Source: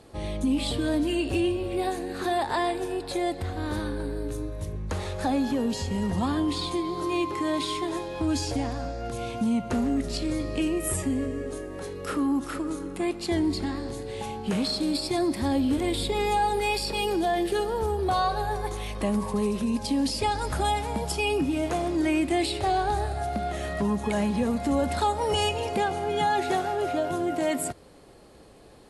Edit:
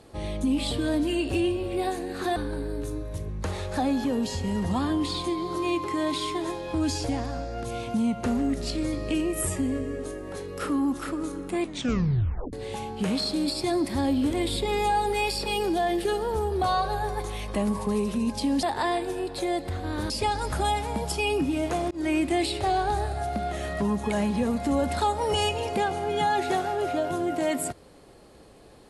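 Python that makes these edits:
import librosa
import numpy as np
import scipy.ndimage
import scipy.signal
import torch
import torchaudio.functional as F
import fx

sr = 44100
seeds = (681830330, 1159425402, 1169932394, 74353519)

y = fx.edit(x, sr, fx.move(start_s=2.36, length_s=1.47, to_s=20.1),
    fx.tape_stop(start_s=13.08, length_s=0.92),
    fx.fade_in_span(start_s=21.91, length_s=0.27, curve='qsin'), tone=tone)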